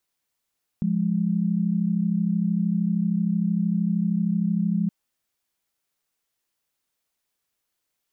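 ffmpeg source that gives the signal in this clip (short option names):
-f lavfi -i "aevalsrc='0.0708*(sin(2*PI*174.61*t)+sin(2*PI*207.65*t))':d=4.07:s=44100"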